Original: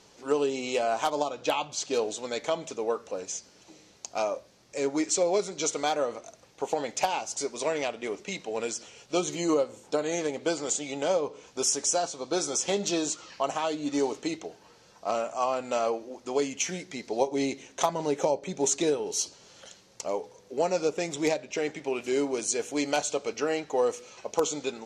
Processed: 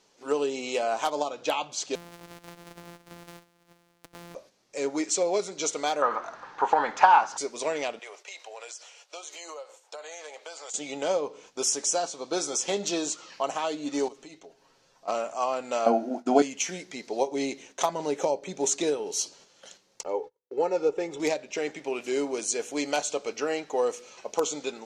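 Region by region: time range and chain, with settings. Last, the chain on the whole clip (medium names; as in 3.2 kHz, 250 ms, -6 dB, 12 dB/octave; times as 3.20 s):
1.95–4.35 s: sorted samples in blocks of 256 samples + compression 12:1, threshold -40 dBFS
6.02–7.38 s: companding laws mixed up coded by mu + low-pass 3.7 kHz + high-order bell 1.2 kHz +15 dB 1.3 oct
7.99–10.74 s: high-pass 580 Hz 24 dB/octave + compression 4:1, threshold -38 dBFS
14.08–15.08 s: bass shelf 70 Hz +11.5 dB + comb 7.4 ms, depth 51% + compression 2.5:1, threshold -49 dBFS
15.86–16.42 s: expander -47 dBFS + doubling 25 ms -14 dB + small resonant body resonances 240/680/1400 Hz, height 18 dB, ringing for 30 ms
20.03–21.20 s: low-pass 1.3 kHz 6 dB/octave + gate -49 dBFS, range -32 dB + comb 2.3 ms, depth 67%
whole clip: peaking EQ 77 Hz -13.5 dB 1.6 oct; gate -51 dBFS, range -7 dB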